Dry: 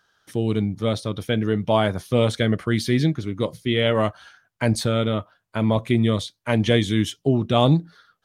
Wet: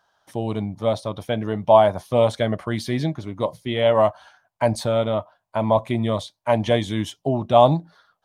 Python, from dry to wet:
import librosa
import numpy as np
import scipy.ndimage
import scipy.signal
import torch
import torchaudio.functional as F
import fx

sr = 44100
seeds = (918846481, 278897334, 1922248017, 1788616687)

y = fx.band_shelf(x, sr, hz=780.0, db=12.0, octaves=1.1)
y = y * 10.0 ** (-4.0 / 20.0)